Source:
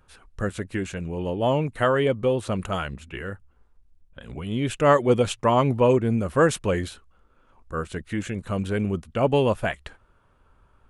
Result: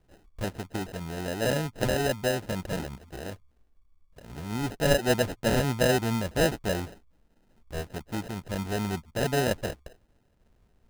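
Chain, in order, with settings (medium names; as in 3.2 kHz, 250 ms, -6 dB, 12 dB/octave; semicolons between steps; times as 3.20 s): sample-and-hold 39×; trim -5 dB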